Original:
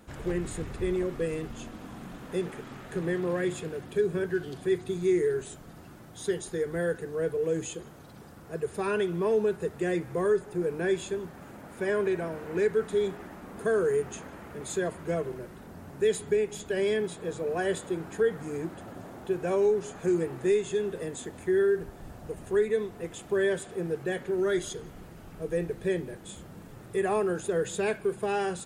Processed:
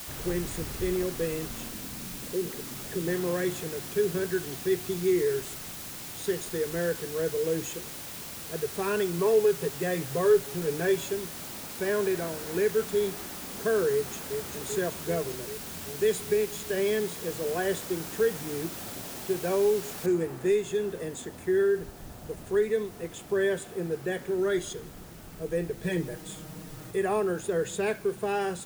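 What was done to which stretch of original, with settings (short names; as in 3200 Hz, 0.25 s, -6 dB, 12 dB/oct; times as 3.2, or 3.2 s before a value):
1.7–3.08 formant sharpening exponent 2
9.18–11.13 comb 7.2 ms, depth 66%
13.91–14.36 echo throw 0.39 s, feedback 75%, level -6.5 dB
20.06 noise floor step -41 dB -54 dB
25.82–26.91 comb 6.4 ms, depth 96%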